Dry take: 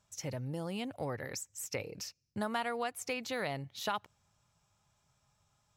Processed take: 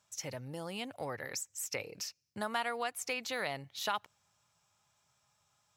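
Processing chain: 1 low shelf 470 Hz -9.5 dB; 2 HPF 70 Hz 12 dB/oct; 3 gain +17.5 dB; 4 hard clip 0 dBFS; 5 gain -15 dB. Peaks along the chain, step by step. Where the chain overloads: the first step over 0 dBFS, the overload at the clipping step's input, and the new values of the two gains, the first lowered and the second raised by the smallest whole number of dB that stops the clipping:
-21.5, -21.0, -3.5, -3.5, -18.5 dBFS; no overload

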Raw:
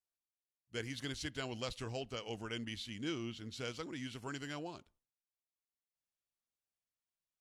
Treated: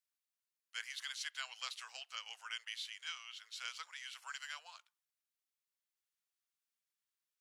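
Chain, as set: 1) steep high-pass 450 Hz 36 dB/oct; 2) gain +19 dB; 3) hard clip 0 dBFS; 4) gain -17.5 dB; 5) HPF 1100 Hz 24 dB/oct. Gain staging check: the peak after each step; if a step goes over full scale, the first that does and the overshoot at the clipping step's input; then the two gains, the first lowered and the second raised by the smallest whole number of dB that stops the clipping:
-25.0, -6.0, -6.0, -23.5, -25.0 dBFS; no overload

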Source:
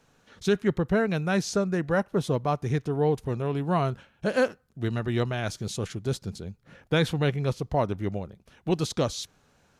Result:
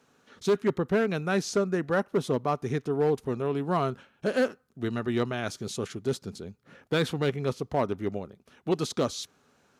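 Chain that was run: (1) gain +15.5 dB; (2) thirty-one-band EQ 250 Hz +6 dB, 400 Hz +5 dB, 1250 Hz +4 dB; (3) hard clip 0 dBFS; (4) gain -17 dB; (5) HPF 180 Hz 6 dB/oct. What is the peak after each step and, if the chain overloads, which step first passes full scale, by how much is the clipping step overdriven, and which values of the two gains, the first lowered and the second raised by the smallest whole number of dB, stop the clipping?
+3.5, +7.0, 0.0, -17.0, -13.5 dBFS; step 1, 7.0 dB; step 1 +8.5 dB, step 4 -10 dB

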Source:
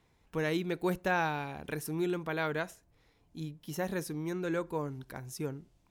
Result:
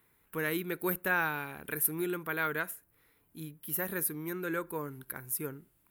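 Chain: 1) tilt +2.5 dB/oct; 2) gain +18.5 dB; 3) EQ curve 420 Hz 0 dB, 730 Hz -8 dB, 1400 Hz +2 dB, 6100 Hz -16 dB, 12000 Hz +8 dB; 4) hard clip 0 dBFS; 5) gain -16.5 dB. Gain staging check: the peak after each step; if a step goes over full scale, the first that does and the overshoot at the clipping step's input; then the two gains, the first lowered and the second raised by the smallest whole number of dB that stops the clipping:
-15.5, +3.0, +3.5, 0.0, -16.5 dBFS; step 2, 3.5 dB; step 2 +14.5 dB, step 5 -12.5 dB

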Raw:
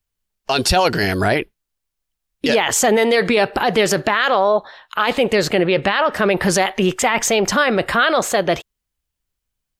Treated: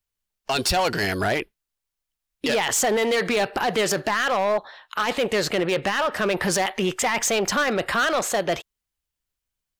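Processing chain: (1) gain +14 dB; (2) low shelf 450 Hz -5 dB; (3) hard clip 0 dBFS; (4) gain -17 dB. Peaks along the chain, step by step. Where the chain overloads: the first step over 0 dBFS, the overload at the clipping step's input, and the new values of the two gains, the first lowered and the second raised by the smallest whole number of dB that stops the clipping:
+8.5, +9.0, 0.0, -17.0 dBFS; step 1, 9.0 dB; step 1 +5 dB, step 4 -8 dB

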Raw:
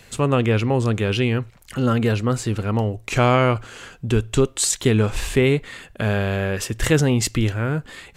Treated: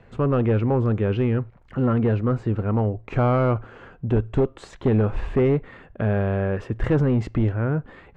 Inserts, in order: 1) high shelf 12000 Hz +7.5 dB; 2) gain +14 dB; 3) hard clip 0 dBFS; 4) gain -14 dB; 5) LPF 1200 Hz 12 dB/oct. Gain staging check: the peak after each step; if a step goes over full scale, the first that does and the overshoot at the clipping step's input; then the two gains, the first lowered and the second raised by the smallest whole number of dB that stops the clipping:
-4.5, +9.5, 0.0, -14.0, -13.5 dBFS; step 2, 9.5 dB; step 2 +4 dB, step 4 -4 dB

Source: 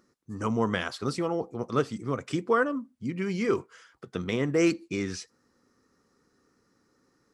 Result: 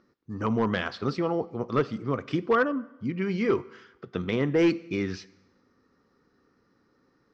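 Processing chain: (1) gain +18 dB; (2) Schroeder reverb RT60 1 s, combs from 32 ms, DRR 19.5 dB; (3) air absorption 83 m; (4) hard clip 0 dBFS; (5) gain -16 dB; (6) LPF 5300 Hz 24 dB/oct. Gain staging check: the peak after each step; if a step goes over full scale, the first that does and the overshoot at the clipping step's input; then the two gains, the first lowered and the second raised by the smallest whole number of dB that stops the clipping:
+6.5, +6.5, +6.0, 0.0, -16.0, -15.5 dBFS; step 1, 6.0 dB; step 1 +12 dB, step 5 -10 dB

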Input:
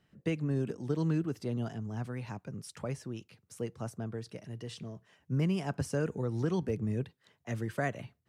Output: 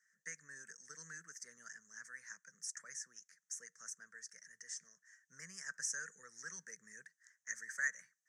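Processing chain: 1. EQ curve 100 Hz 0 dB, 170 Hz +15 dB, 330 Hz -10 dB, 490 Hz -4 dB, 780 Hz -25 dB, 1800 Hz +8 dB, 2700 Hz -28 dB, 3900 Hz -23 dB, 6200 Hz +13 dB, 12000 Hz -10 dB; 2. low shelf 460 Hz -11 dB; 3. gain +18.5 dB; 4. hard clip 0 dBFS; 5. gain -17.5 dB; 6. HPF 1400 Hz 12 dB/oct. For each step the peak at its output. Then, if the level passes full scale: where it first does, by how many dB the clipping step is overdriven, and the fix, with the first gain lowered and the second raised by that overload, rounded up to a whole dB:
-11.0, -20.5, -2.0, -2.0, -19.5, -24.5 dBFS; no overload

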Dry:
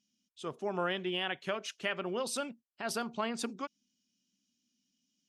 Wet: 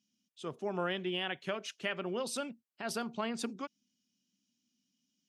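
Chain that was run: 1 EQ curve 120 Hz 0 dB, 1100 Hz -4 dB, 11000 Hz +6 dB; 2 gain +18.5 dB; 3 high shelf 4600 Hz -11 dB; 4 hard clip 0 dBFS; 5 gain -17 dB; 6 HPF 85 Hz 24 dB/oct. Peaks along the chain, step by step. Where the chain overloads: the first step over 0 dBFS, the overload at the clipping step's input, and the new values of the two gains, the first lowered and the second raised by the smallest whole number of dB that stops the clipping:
-20.0, -1.5, -3.5, -3.5, -20.5, -20.0 dBFS; no overload

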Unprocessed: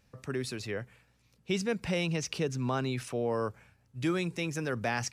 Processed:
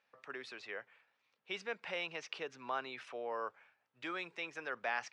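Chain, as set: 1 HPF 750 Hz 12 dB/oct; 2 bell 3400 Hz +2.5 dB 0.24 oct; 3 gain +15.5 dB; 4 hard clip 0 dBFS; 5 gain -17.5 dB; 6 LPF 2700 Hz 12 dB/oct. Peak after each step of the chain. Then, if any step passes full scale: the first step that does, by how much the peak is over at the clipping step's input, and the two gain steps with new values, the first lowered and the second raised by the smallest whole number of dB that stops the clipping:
-18.5, -18.0, -2.5, -2.5, -20.0, -22.5 dBFS; no overload

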